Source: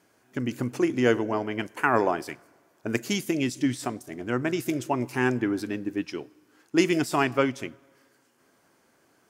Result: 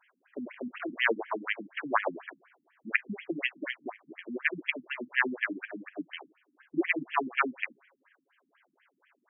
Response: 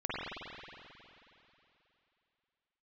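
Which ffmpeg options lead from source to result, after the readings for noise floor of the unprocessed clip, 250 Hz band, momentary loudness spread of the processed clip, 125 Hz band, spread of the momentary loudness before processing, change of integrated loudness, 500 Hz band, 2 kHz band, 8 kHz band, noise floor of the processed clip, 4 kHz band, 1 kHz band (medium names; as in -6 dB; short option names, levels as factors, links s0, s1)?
-65 dBFS, -11.0 dB, 14 LU, -20.5 dB, 13 LU, -5.5 dB, -10.0 dB, +1.0 dB, under -40 dB, -77 dBFS, -4.5 dB, -5.0 dB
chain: -af "aeval=exprs='if(lt(val(0),0),0.447*val(0),val(0))':c=same,tiltshelf=f=860:g=-9,afftfilt=real='re*between(b*sr/1024,200*pow(2400/200,0.5+0.5*sin(2*PI*4.1*pts/sr))/1.41,200*pow(2400/200,0.5+0.5*sin(2*PI*4.1*pts/sr))*1.41)':imag='im*between(b*sr/1024,200*pow(2400/200,0.5+0.5*sin(2*PI*4.1*pts/sr))/1.41,200*pow(2400/200,0.5+0.5*sin(2*PI*4.1*pts/sr))*1.41)':win_size=1024:overlap=0.75,volume=1.58"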